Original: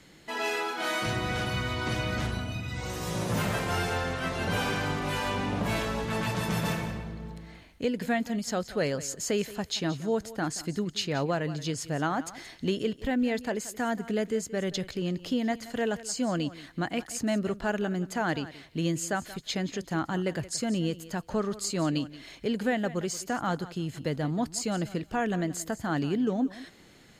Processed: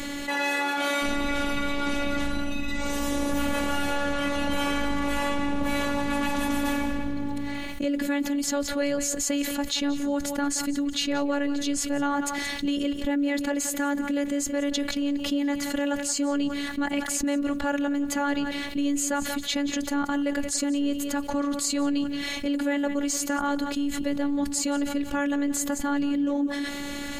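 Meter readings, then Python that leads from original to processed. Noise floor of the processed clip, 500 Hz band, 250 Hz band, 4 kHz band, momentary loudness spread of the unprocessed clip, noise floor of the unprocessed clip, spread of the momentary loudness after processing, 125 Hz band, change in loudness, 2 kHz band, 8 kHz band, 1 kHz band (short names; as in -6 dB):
-33 dBFS, +0.5 dB, +5.5 dB, +4.0 dB, 5 LU, -54 dBFS, 3 LU, -10.0 dB, +3.5 dB, +3.0 dB, +7.0 dB, +2.5 dB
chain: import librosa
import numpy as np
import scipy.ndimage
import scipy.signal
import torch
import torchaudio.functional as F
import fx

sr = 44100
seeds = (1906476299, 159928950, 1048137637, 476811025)

y = fx.graphic_eq_31(x, sr, hz=(100, 160, 5000), db=(10, 9, -6))
y = fx.robotise(y, sr, hz=285.0)
y = fx.env_flatten(y, sr, amount_pct=70)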